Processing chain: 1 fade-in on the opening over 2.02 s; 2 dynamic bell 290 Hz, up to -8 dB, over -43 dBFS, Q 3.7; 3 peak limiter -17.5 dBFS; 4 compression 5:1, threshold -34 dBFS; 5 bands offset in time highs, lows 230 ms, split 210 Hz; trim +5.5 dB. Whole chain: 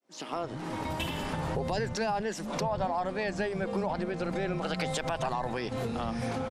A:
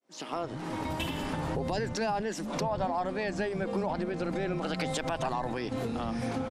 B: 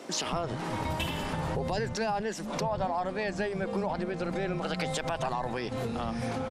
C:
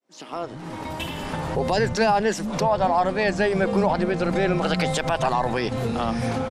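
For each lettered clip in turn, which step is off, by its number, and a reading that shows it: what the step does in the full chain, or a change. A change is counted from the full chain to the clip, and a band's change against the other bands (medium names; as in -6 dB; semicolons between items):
2, 250 Hz band +1.5 dB; 1, 8 kHz band +3.0 dB; 4, mean gain reduction 7.5 dB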